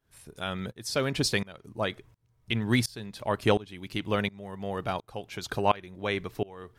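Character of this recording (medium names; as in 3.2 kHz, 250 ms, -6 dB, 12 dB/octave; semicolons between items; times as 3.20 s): tremolo saw up 1.4 Hz, depth 95%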